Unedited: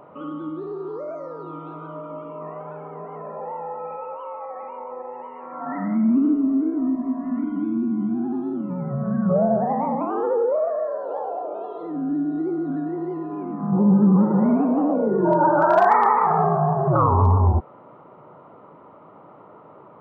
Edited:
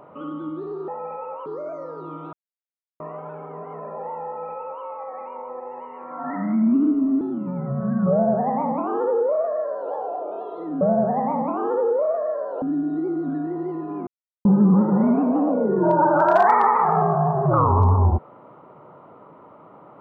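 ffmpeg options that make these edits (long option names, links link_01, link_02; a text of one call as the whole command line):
ffmpeg -i in.wav -filter_complex "[0:a]asplit=10[link_01][link_02][link_03][link_04][link_05][link_06][link_07][link_08][link_09][link_10];[link_01]atrim=end=0.882[link_11];[link_02]atrim=start=3.678:end=4.262[link_12];[link_03]atrim=start=0.878:end=1.75,asetpts=PTS-STARTPTS,afade=type=out:start_time=0.868:duration=0.004:curve=hsin[link_13];[link_04]atrim=start=1.75:end=2.42,asetpts=PTS-STARTPTS,volume=0[link_14];[link_05]atrim=start=2.42:end=6.632,asetpts=PTS-STARTPTS,afade=type=in:duration=0.004:curve=hsin[link_15];[link_06]atrim=start=8.438:end=12.042[link_16];[link_07]atrim=start=9.338:end=11.152[link_17];[link_08]atrim=start=12.038:end=13.49,asetpts=PTS-STARTPTS,afade=type=out:start_time=1.448:duration=0.004:curve=hsin[link_18];[link_09]atrim=start=13.49:end=13.87,asetpts=PTS-STARTPTS,volume=0[link_19];[link_10]atrim=start=13.87,asetpts=PTS-STARTPTS,afade=type=in:duration=0.004:curve=hsin[link_20];[link_11][link_12]acrossfade=duration=0.004:curve1=hsin:curve2=hsin[link_21];[link_13][link_14][link_15]concat=n=3:v=0:a=1[link_22];[link_21][link_22]acrossfade=duration=0.004:curve1=hsin:curve2=hsin[link_23];[link_23][link_16]acrossfade=duration=0.004:curve1=hsin:curve2=hsin[link_24];[link_24][link_17]acrossfade=duration=0.004:curve1=hsin:curve2=hsin[link_25];[link_18][link_19][link_20]concat=n=3:v=0:a=1[link_26];[link_25][link_26]acrossfade=duration=0.004:curve1=hsin:curve2=hsin" out.wav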